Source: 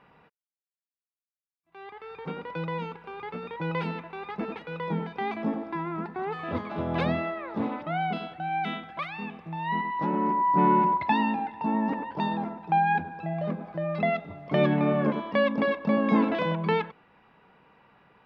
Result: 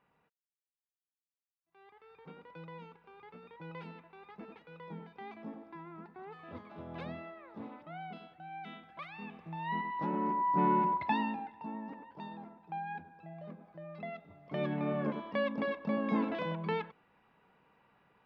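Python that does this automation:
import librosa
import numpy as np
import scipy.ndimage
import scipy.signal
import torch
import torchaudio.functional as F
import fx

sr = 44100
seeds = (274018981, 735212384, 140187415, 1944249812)

y = fx.gain(x, sr, db=fx.line((8.65, -16.0), (9.44, -7.0), (11.14, -7.0), (11.85, -17.0), (14.11, -17.0), (14.95, -9.0)))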